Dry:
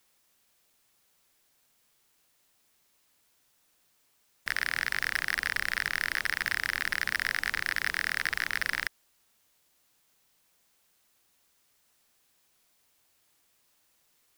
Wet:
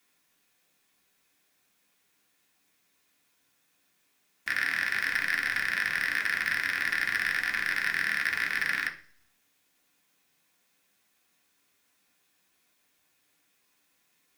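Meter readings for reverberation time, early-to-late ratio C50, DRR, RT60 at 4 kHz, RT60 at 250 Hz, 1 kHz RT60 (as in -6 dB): 0.45 s, 12.5 dB, -0.5 dB, 0.60 s, 0.70 s, 0.40 s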